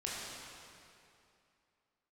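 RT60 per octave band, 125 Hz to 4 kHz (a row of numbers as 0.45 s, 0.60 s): 2.5 s, 2.7 s, 2.6 s, 2.6 s, 2.4 s, 2.2 s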